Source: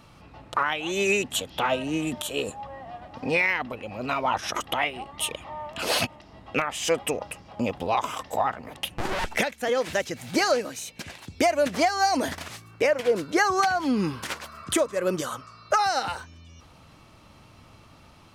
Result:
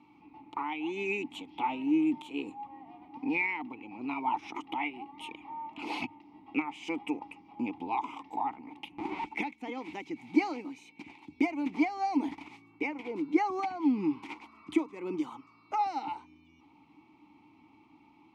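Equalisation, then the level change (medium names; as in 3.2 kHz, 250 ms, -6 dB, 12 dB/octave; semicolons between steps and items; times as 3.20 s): vowel filter u; hum notches 50/100/150 Hz; +5.0 dB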